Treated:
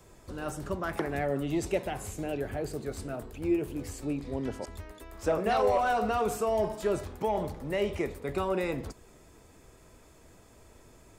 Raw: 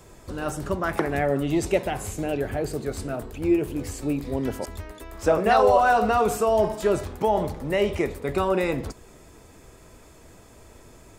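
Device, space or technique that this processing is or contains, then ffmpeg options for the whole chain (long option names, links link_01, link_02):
one-band saturation: -filter_complex "[0:a]acrossover=split=510|3000[link_01][link_02][link_03];[link_02]asoftclip=type=tanh:threshold=-17dB[link_04];[link_01][link_04][link_03]amix=inputs=3:normalize=0,asettb=1/sr,asplit=3[link_05][link_06][link_07];[link_05]atrim=end=4.054[link_08];[link_06]atrim=start=4.05:end=4.73,asetpts=PTS-STARTPTS,afade=type=in:duration=0.004:curve=qsin,afade=type=out:start_time=0.676:duration=0.004:curve=qsin,lowpass=8400[link_09];[link_07]atrim=start=4.726[link_10];[link_08][link_09]acrossfade=duration=0.004:curve1=hsin:curve2=qsin[link_11];[link_11][link_10]acrossfade=duration=0.004:curve1=qsin:curve2=hsin,volume=-6.5dB"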